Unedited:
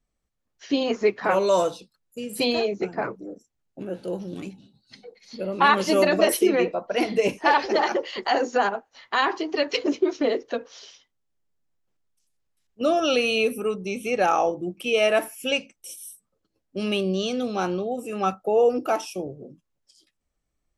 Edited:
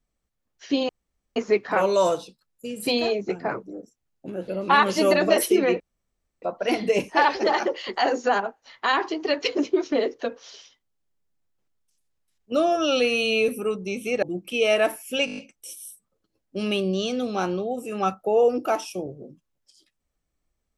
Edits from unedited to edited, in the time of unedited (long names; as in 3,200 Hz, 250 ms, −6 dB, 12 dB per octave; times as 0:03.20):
0:00.89: splice in room tone 0.47 s
0:04.01–0:05.39: remove
0:06.71: splice in room tone 0.62 s
0:12.89–0:13.48: time-stretch 1.5×
0:14.22–0:14.55: remove
0:15.58: stutter 0.02 s, 7 plays